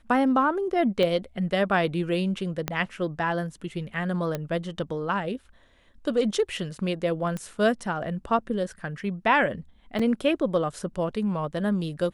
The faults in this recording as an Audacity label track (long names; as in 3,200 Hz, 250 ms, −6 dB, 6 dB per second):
1.030000	1.030000	click −15 dBFS
2.680000	2.680000	click −11 dBFS
4.350000	4.350000	click −15 dBFS
7.370000	7.370000	click −20 dBFS
9.990000	9.990000	drop-out 4.4 ms